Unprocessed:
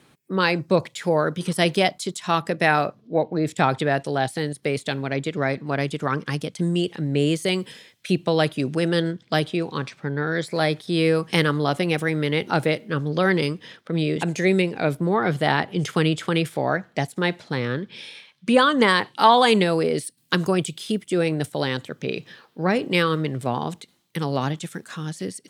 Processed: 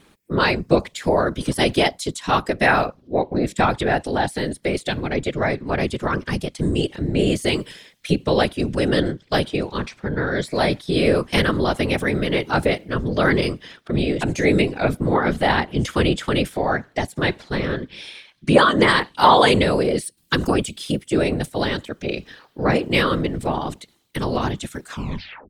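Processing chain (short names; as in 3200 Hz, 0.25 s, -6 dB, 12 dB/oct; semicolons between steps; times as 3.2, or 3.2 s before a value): tape stop at the end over 0.59 s; whisperiser; gain +2 dB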